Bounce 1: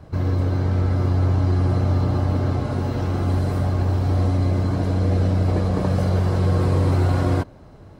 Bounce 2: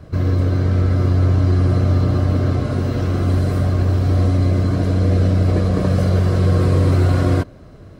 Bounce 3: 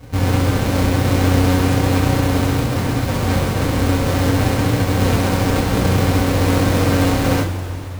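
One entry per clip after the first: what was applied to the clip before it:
peaking EQ 860 Hz -14 dB 0.24 oct; trim +4 dB
square wave that keeps the level; two-slope reverb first 0.22 s, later 3.3 s, from -18 dB, DRR -3.5 dB; trim -8 dB

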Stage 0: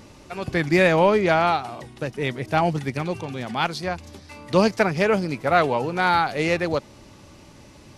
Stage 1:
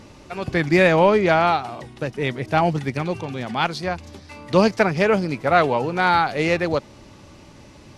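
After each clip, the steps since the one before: treble shelf 10 kHz -9.5 dB; trim +2 dB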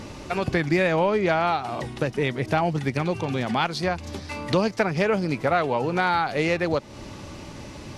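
compression 3:1, threshold -29 dBFS, peak gain reduction 14 dB; trim +6.5 dB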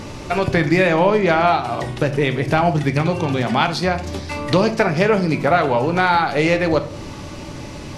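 simulated room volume 85 m³, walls mixed, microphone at 0.3 m; trim +5.5 dB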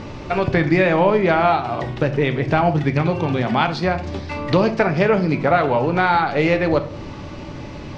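distance through air 150 m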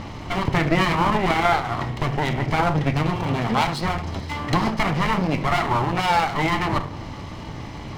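comb filter that takes the minimum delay 0.97 ms

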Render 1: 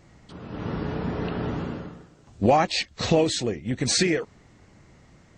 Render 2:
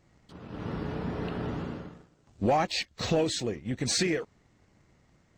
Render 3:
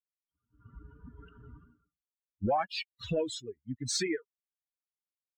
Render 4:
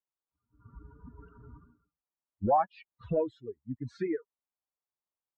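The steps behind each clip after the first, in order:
waveshaping leveller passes 1; trim -8.5 dB
expander on every frequency bin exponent 3
resonant low-pass 1 kHz, resonance Q 1.9

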